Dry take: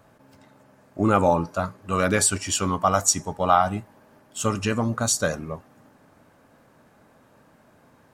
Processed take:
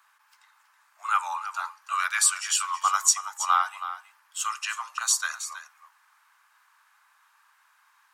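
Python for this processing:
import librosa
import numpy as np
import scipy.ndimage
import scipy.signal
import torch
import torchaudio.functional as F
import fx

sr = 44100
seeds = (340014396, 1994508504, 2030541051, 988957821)

p1 = scipy.signal.sosfilt(scipy.signal.butter(8, 970.0, 'highpass', fs=sr, output='sos'), x)
y = p1 + fx.echo_single(p1, sr, ms=323, db=-12.0, dry=0)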